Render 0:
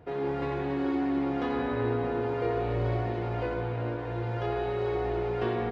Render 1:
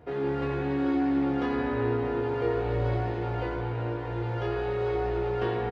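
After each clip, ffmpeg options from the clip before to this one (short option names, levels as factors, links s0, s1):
-filter_complex "[0:a]asplit=2[s0][s1];[s1]adelay=15,volume=0.562[s2];[s0][s2]amix=inputs=2:normalize=0"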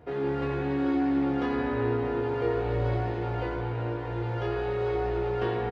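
-af anull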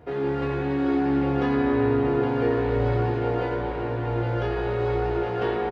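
-filter_complex "[0:a]asplit=2[s0][s1];[s1]adelay=816,lowpass=f=2000:p=1,volume=0.668,asplit=2[s2][s3];[s3]adelay=816,lowpass=f=2000:p=1,volume=0.49,asplit=2[s4][s5];[s5]adelay=816,lowpass=f=2000:p=1,volume=0.49,asplit=2[s6][s7];[s7]adelay=816,lowpass=f=2000:p=1,volume=0.49,asplit=2[s8][s9];[s9]adelay=816,lowpass=f=2000:p=1,volume=0.49,asplit=2[s10][s11];[s11]adelay=816,lowpass=f=2000:p=1,volume=0.49[s12];[s0][s2][s4][s6][s8][s10][s12]amix=inputs=7:normalize=0,volume=1.41"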